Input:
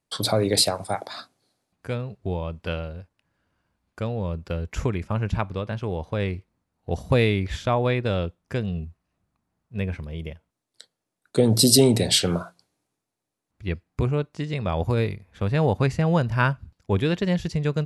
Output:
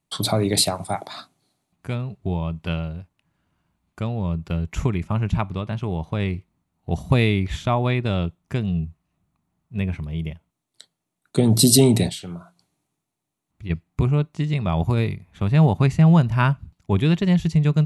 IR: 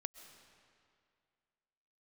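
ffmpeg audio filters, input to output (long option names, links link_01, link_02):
-filter_complex "[0:a]equalizer=frequency=160:width_type=o:width=0.33:gain=7,equalizer=frequency=500:width_type=o:width=0.33:gain=-10,equalizer=frequency=1600:width_type=o:width=0.33:gain=-6,equalizer=frequency=5000:width_type=o:width=0.33:gain=-6,asplit=3[link_01][link_02][link_03];[link_01]afade=type=out:start_time=12.08:duration=0.02[link_04];[link_02]acompressor=threshold=-33dB:ratio=12,afade=type=in:start_time=12.08:duration=0.02,afade=type=out:start_time=13.69:duration=0.02[link_05];[link_03]afade=type=in:start_time=13.69:duration=0.02[link_06];[link_04][link_05][link_06]amix=inputs=3:normalize=0,volume=2.5dB"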